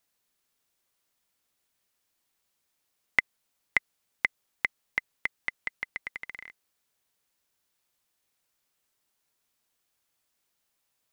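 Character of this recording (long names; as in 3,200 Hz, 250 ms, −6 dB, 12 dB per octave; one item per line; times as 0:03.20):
background noise floor −78 dBFS
spectral slope −2.0 dB per octave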